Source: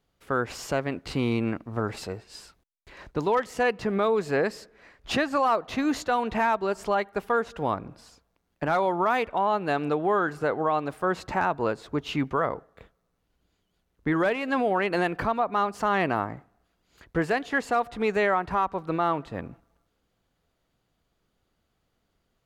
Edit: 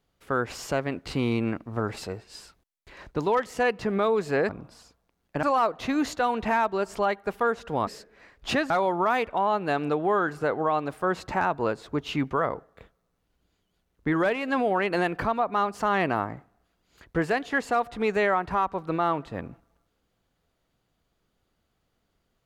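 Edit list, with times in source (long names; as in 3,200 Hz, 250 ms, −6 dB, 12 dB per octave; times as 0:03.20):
0:04.49–0:05.32: swap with 0:07.76–0:08.70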